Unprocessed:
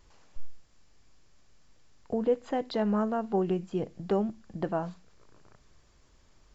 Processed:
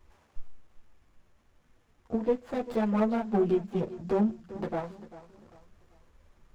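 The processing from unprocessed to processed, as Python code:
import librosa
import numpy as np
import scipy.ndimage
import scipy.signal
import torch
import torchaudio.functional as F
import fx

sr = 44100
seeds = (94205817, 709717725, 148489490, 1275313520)

p1 = fx.chorus_voices(x, sr, voices=6, hz=1.1, base_ms=11, depth_ms=3.0, mix_pct=55)
p2 = p1 + fx.echo_feedback(p1, sr, ms=394, feedback_pct=35, wet_db=-16, dry=0)
p3 = fx.running_max(p2, sr, window=9)
y = p3 * 10.0 ** (3.0 / 20.0)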